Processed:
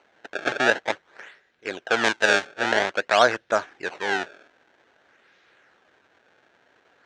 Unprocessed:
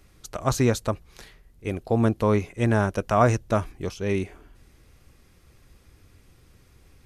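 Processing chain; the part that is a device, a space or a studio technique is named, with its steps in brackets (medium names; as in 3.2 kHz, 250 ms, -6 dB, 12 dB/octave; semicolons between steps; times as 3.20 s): circuit-bent sampling toy (decimation with a swept rate 25×, swing 160% 0.51 Hz; cabinet simulation 550–5700 Hz, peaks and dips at 1.1 kHz -5 dB, 1.6 kHz +9 dB, 4.9 kHz -7 dB); 2.04–2.47 s: treble shelf 3.6 kHz +9 dB; trim +4.5 dB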